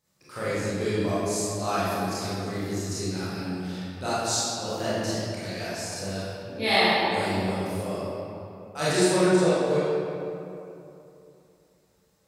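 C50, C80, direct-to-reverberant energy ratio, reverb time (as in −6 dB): −5.5 dB, −2.5 dB, −12.0 dB, 2.9 s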